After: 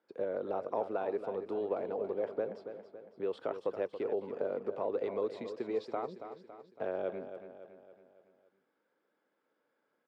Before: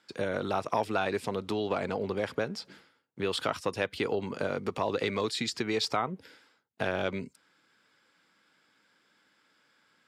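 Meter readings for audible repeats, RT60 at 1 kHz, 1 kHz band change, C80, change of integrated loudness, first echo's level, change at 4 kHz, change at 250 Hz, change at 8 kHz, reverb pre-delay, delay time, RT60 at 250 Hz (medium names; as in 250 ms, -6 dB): 5, no reverb, -8.0 dB, no reverb, -5.0 dB, -10.0 dB, -23.5 dB, -8.0 dB, under -25 dB, no reverb, 279 ms, no reverb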